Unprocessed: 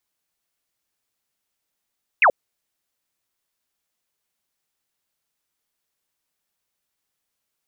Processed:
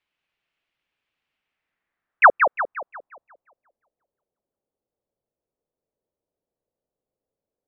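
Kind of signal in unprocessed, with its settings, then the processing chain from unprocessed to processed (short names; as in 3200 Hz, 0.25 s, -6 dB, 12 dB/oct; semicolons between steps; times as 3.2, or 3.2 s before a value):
laser zap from 2800 Hz, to 480 Hz, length 0.08 s sine, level -10.5 dB
low-pass sweep 2700 Hz -> 520 Hz, 1.32–3.8; on a send: darkening echo 0.176 s, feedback 47%, low-pass 3200 Hz, level -6 dB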